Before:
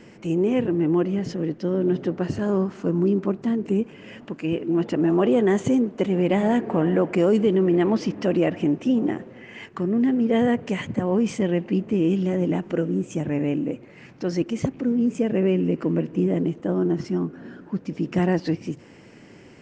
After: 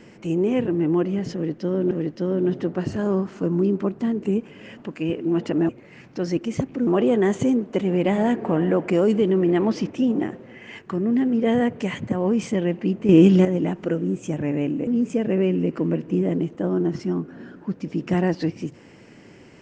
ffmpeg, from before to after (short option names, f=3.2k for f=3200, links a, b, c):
-filter_complex "[0:a]asplit=8[a][b][c][d][e][f][g][h];[a]atrim=end=1.912[i];[b]atrim=start=1.338:end=5.122[j];[c]atrim=start=13.738:end=14.922[k];[d]atrim=start=5.118:end=8.162[l];[e]atrim=start=8.778:end=11.962[m];[f]atrim=start=11.958:end=12.322,asetpts=PTS-STARTPTS,volume=8.5dB[n];[g]atrim=start=12.318:end=13.742[o];[h]atrim=start=14.918[p];[i][j]acrossfade=d=0.004:c1=hsin:c2=hsin[q];[q][k]acrossfade=d=0.004:c1=hsin:c2=hsin[r];[r][l]acrossfade=d=0.004:c1=hsin:c2=hsin[s];[s][m]acrossfade=d=0.004:c1=hsin:c2=hsin[t];[t][n]acrossfade=d=0.004:c1=hsin:c2=hsin[u];[u][o]acrossfade=d=0.004:c1=hsin:c2=hsin[v];[v][p]acrossfade=d=0.004:c1=hsin:c2=hsin"